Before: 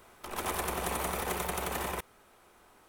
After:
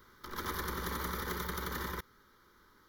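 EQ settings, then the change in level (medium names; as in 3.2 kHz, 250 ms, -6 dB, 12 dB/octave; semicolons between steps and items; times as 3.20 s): static phaser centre 2.6 kHz, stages 6; 0.0 dB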